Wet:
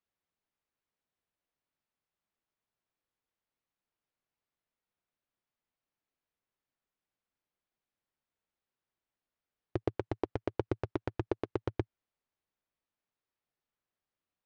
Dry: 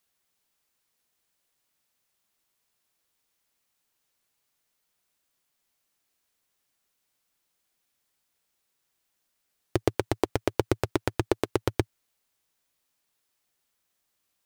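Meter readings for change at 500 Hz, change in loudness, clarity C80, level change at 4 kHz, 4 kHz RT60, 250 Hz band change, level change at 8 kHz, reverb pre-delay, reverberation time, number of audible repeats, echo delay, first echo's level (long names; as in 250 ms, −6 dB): −8.0 dB, −8.0 dB, no reverb audible, −16.5 dB, no reverb audible, −7.5 dB, below −25 dB, no reverb audible, no reverb audible, no echo audible, no echo audible, no echo audible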